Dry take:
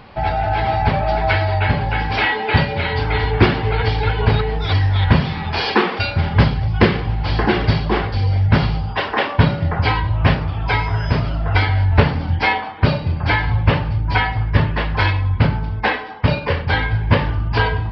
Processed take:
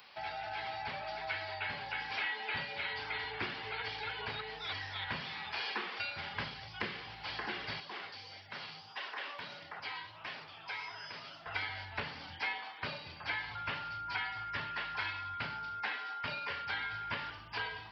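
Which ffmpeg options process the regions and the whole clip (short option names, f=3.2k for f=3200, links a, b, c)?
-filter_complex "[0:a]asettb=1/sr,asplit=3[a][b][c];[a]atrim=end=7.804[d];[b]atrim=start=7.8:end=11.46,asetpts=PTS-STARTPTS,afade=t=in:d=0.004:c=qsin,afade=t=out:st=3.656:d=0.004:c=qsin,highpass=120,flanger=delay=2.7:depth=9.5:regen=54:speed=1.6:shape=sinusoidal,acompressor=threshold=-23dB:ratio=3:attack=3.2:release=140:knee=1:detection=peak[e];[c]atrim=start=11.456[f];[d][e]acrossfade=d=0.004:c1=hsin:c2=qsin[g];[g][f]acrossfade=d=0.004:c1=qsin:c2=hsin,asettb=1/sr,asplit=3[h][i][j];[h]atrim=end=13.554[k];[i]atrim=start=13.55:end=17.3,asetpts=PTS-STARTPTS,afade=t=in:d=0.004:c=qsin,afade=t=out:st=3.746:d=0.004:c=qsin,equalizer=f=510:w=6.7:g=-6.5,aeval=exprs='val(0)+0.0501*sin(2*PI*1400*n/s)':c=same[l];[j]atrim=start=17.296[m];[k][l]acrossfade=d=0.004:c1=hsin:c2=qsin[n];[n][m]acrossfade=d=0.004:c1=qsin:c2=hsin,acrossover=split=280[o][p];[p]acompressor=threshold=-22dB:ratio=3[q];[o][q]amix=inputs=2:normalize=0,aderivative,acrossover=split=2800[r][s];[s]acompressor=threshold=-50dB:ratio=4:attack=1:release=60[t];[r][t]amix=inputs=2:normalize=0,volume=1dB"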